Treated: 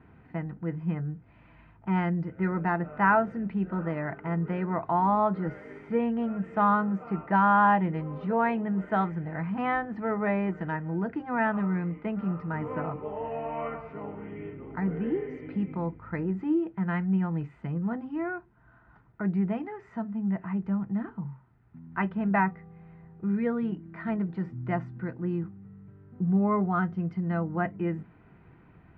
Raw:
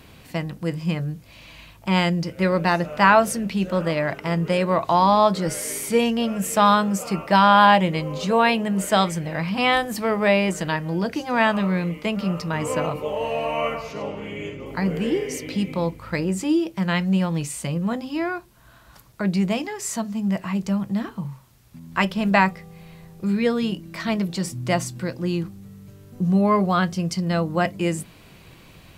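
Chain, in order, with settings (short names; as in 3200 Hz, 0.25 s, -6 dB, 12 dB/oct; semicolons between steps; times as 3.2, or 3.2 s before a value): Chebyshev low-pass 1700 Hz, order 3; bell 560 Hz -2 dB; notch comb 560 Hz; gain -5 dB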